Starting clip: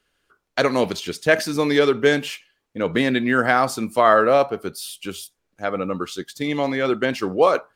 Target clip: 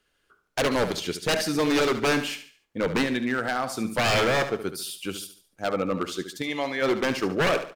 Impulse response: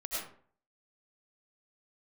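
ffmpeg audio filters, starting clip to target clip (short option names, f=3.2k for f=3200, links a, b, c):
-filter_complex "[0:a]asettb=1/sr,asplit=3[a][b][c];[a]atrim=end=3.024[d];[b]atrim=start=3.02:end=3.85,asetpts=PTS-STARTPTS,afade=t=in:d=0.004:c=qsin,afade=t=out:st=0.826:d=0.004:c=qsin,acompressor=threshold=-22dB:ratio=4[e];[c]atrim=start=3.846[f];[d][e]acrossfade=d=0.004:c1=hsin:c2=qsin[g];[g][f]acrossfade=d=0.004:c1=qsin:c2=hsin,asplit=3[h][i][j];[h]afade=t=out:st=6.41:d=0.02[k];[i]lowshelf=f=490:g=-11,afade=t=in:st=6.41:d=0.02,afade=t=out:st=6.81:d=0.02[l];[j]afade=t=in:st=6.81:d=0.02[m];[k][l][m]amix=inputs=3:normalize=0,aeval=exprs='0.168*(abs(mod(val(0)/0.168+3,4)-2)-1)':c=same,aecho=1:1:72|144|216|288:0.282|0.104|0.0386|0.0143,volume=-1.5dB"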